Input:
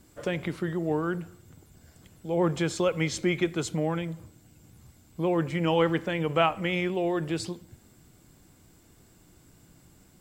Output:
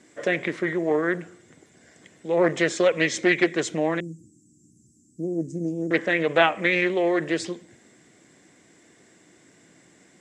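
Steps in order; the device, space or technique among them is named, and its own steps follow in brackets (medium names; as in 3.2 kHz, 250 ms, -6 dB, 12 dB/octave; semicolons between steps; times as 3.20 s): 4.00–5.91 s: inverse Chebyshev band-stop 570–3600 Hz, stop band 40 dB; full-range speaker at full volume (loudspeaker Doppler distortion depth 0.33 ms; cabinet simulation 280–7800 Hz, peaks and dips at 880 Hz -6 dB, 1.3 kHz -6 dB, 1.9 kHz +9 dB, 2.8 kHz -3 dB, 4.5 kHz -7 dB); trim +7 dB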